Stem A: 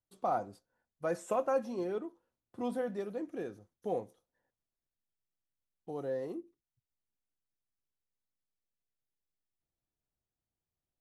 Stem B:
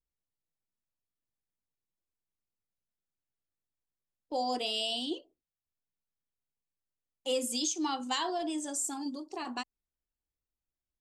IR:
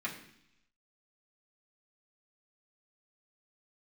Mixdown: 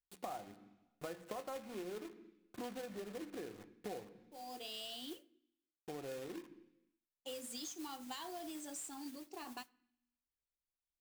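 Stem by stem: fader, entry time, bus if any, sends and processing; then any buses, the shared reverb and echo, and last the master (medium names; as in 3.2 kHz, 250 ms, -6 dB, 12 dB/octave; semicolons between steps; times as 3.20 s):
-1.0 dB, 0.00 s, send -10 dB, low-pass that closes with the level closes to 1.9 kHz, closed at -33 dBFS; companded quantiser 4-bit
-9.5 dB, 0.00 s, send -20 dB, modulation noise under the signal 11 dB; auto duck -23 dB, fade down 0.80 s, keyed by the first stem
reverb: on, RT60 0.70 s, pre-delay 3 ms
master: compression 5:1, threshold -43 dBFS, peak gain reduction 15 dB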